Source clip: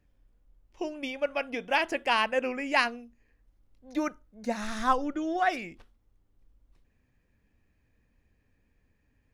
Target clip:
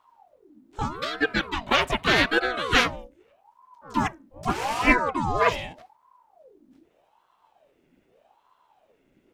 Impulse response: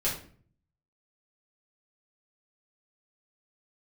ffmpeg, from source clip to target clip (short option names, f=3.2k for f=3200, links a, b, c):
-filter_complex "[0:a]asplit=2[a][b];[b]asetrate=55563,aresample=44100,atempo=0.793701,volume=-1dB[c];[a][c]amix=inputs=2:normalize=0,aeval=exprs='val(0)*sin(2*PI*640*n/s+640*0.6/0.82*sin(2*PI*0.82*n/s))':c=same,volume=5.5dB"